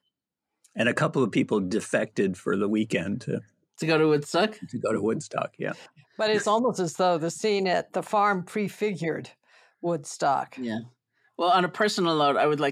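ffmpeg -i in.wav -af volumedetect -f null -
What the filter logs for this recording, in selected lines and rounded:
mean_volume: -26.3 dB
max_volume: -8.6 dB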